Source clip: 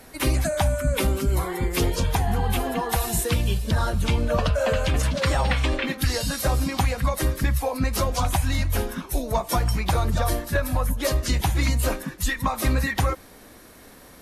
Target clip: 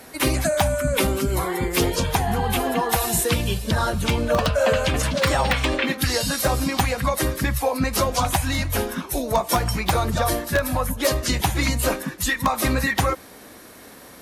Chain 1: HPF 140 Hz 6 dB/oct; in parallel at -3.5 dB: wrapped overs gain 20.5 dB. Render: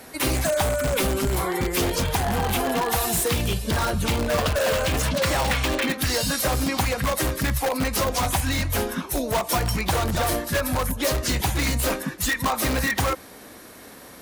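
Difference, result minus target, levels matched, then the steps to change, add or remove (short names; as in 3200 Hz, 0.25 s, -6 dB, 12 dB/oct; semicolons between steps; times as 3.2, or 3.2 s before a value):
wrapped overs: distortion +19 dB
change: wrapped overs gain 13.5 dB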